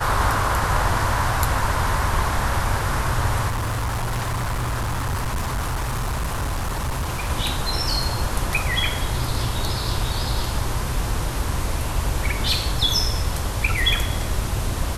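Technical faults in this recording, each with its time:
3.48–7.31 s: clipped -21 dBFS

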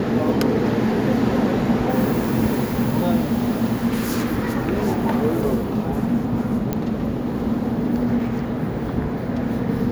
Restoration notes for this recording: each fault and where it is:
6.73 s: pop -10 dBFS

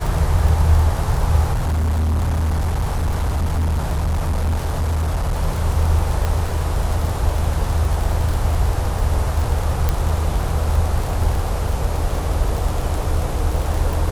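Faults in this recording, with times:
crackle 40 per s -21 dBFS
1.52–5.37 s: clipped -16 dBFS
6.25 s: pop -9 dBFS
9.89 s: pop

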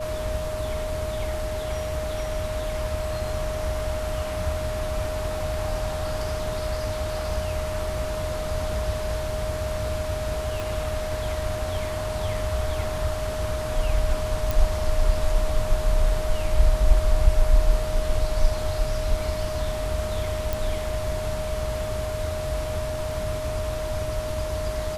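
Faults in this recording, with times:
whine 620 Hz -29 dBFS
10.60 s: pop
14.51 s: pop
20.53 s: pop

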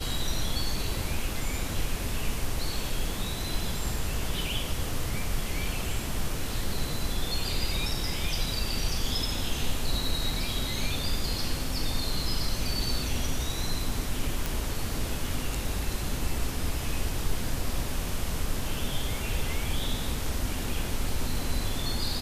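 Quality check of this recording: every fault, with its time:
14.46 s: pop

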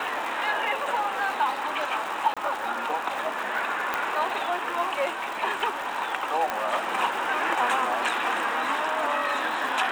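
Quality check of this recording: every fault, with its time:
crackle 320 per s -33 dBFS
2.34–2.37 s: dropout 26 ms
3.94 s: pop -12 dBFS
6.50 s: pop -13 dBFS

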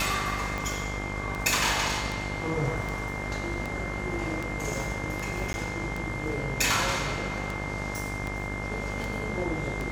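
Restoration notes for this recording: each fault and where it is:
buzz 50 Hz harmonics 36 -35 dBFS
tick 78 rpm
whine 2.1 kHz -36 dBFS
5.53–5.54 s: dropout 11 ms

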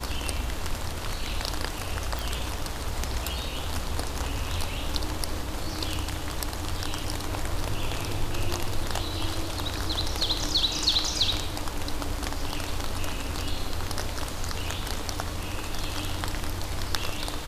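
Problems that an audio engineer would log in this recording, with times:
2.19 s: pop

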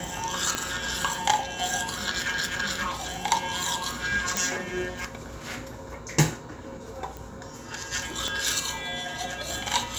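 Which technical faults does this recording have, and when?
0.55 s: pop -10 dBFS
4.37 s: pop
7.17 s: pop
8.28 s: pop -14 dBFS

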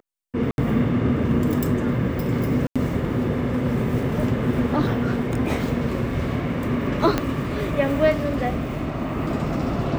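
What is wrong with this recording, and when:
0.51–0.58 s: dropout 71 ms
2.67–2.76 s: dropout 86 ms
5.46 s: dropout 2.1 ms
7.18 s: pop -7 dBFS

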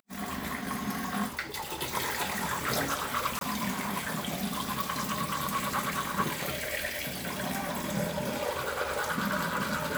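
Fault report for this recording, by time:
3.39–3.41 s: dropout 22 ms

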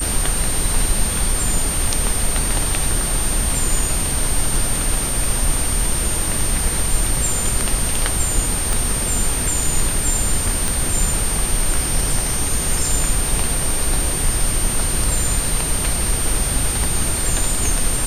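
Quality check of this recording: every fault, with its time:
crackle 21 per s -25 dBFS
whine 8.8 kHz -22 dBFS
8.73 s: pop
10.68 s: pop

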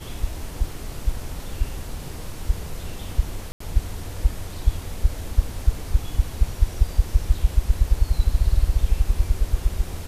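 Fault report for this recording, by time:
3.52–3.60 s: dropout 84 ms

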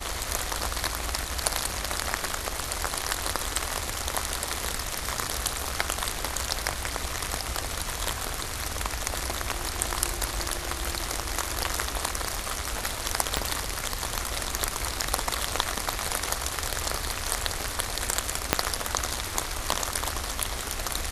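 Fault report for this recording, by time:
13.37 s: pop -7 dBFS
18.53 s: pop -1 dBFS

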